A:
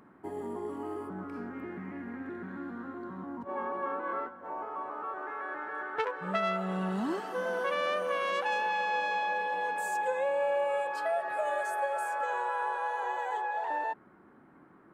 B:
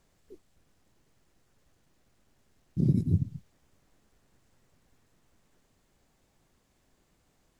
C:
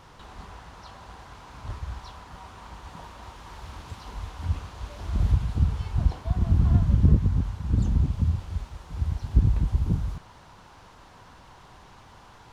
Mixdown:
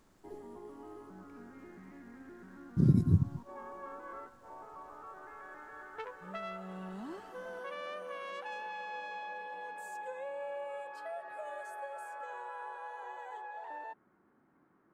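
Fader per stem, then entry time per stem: -11.5 dB, 0.0 dB, mute; 0.00 s, 0.00 s, mute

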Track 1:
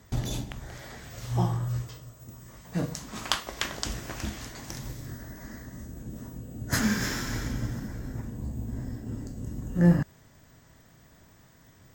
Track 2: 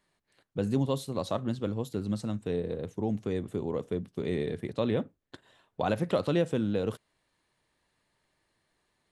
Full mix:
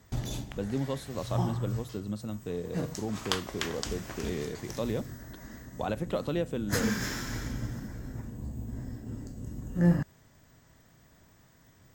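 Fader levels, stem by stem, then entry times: -3.5 dB, -4.0 dB; 0.00 s, 0.00 s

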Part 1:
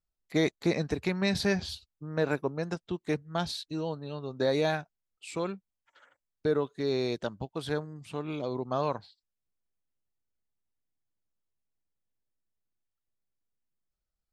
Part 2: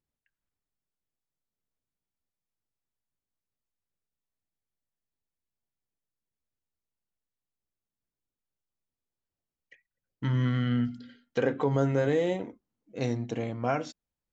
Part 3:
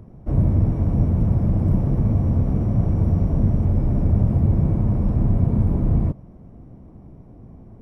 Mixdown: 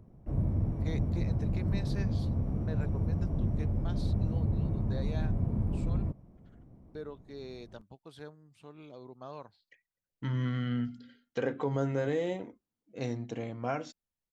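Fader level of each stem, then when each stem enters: -15.0 dB, -5.0 dB, -12.0 dB; 0.50 s, 0.00 s, 0.00 s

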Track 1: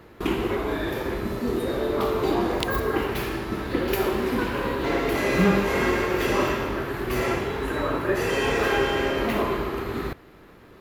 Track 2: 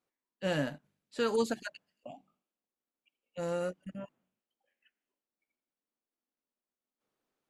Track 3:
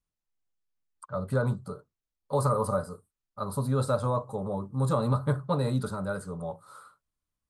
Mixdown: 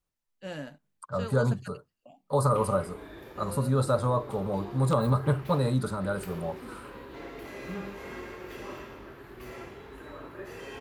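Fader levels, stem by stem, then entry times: -18.0 dB, -7.0 dB, +1.5 dB; 2.30 s, 0.00 s, 0.00 s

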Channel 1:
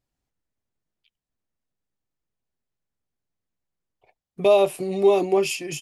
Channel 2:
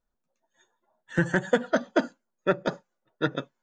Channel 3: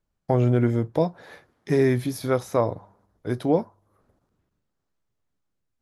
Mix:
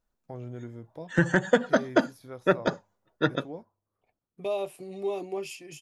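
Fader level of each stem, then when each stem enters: -13.5 dB, +1.5 dB, -19.5 dB; 0.00 s, 0.00 s, 0.00 s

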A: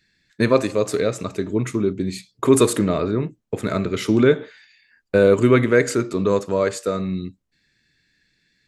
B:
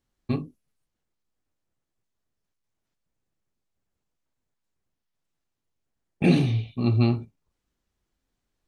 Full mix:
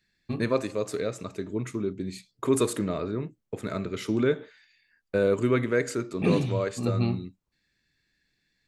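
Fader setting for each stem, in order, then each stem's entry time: -9.0 dB, -5.5 dB; 0.00 s, 0.00 s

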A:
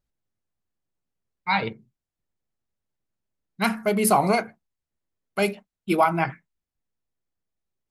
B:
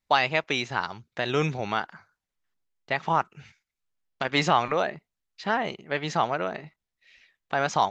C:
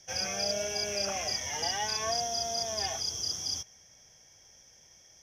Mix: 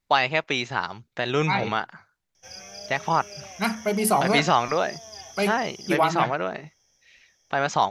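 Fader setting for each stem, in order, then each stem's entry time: -2.0 dB, +1.5 dB, -9.0 dB; 0.00 s, 0.00 s, 2.35 s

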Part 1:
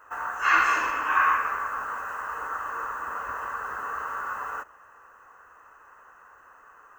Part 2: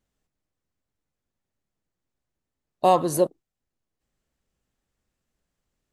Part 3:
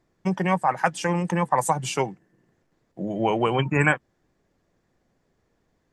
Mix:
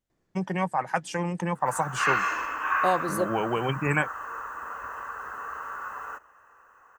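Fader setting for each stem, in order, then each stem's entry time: -4.0 dB, -7.0 dB, -5.0 dB; 1.55 s, 0.00 s, 0.10 s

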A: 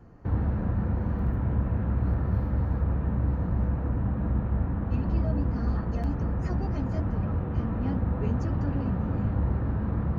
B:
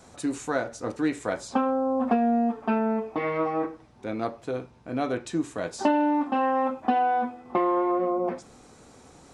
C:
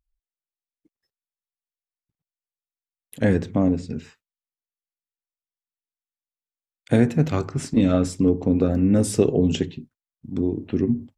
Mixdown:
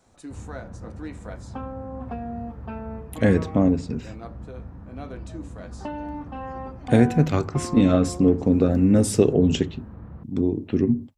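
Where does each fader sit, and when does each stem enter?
-12.5 dB, -11.0 dB, +1.0 dB; 0.05 s, 0.00 s, 0.00 s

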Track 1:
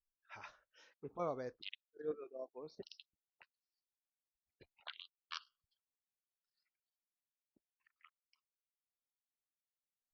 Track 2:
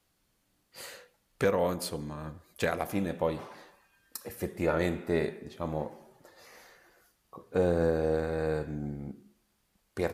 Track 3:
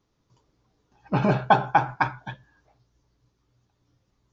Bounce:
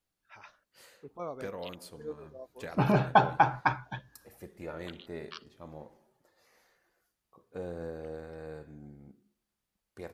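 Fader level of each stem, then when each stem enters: +0.5 dB, -13.0 dB, -3.5 dB; 0.00 s, 0.00 s, 1.65 s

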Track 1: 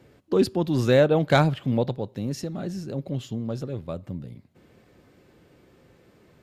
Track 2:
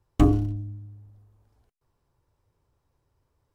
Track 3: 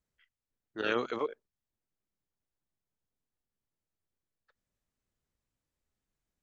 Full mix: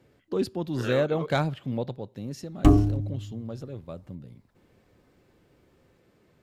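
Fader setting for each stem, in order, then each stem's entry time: -6.5 dB, +1.5 dB, -4.0 dB; 0.00 s, 2.45 s, 0.00 s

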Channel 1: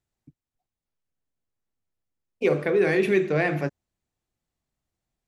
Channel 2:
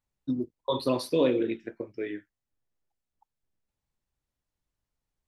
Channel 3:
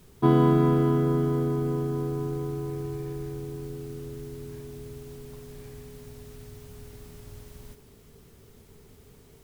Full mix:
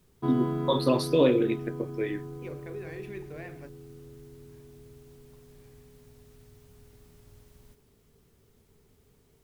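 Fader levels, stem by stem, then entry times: -20.0 dB, +2.5 dB, -10.0 dB; 0.00 s, 0.00 s, 0.00 s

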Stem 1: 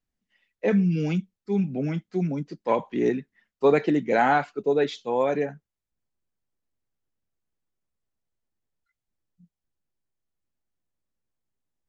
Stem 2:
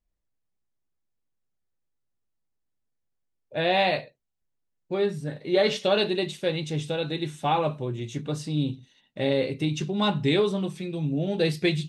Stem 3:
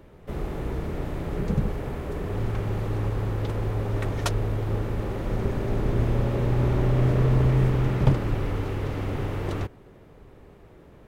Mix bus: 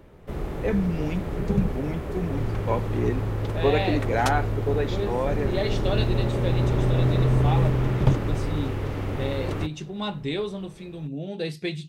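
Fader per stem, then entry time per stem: -3.5 dB, -6.0 dB, 0.0 dB; 0.00 s, 0.00 s, 0.00 s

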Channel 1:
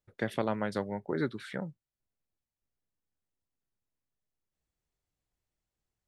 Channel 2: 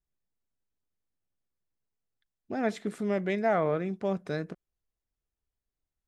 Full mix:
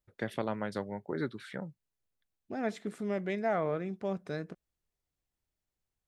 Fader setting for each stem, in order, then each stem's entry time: -3.0 dB, -4.5 dB; 0.00 s, 0.00 s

